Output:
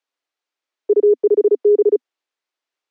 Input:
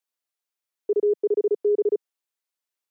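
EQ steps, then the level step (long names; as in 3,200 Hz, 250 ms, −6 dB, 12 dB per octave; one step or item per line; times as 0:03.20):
Butterworth high-pass 250 Hz 96 dB per octave
high-frequency loss of the air 120 metres
+8.5 dB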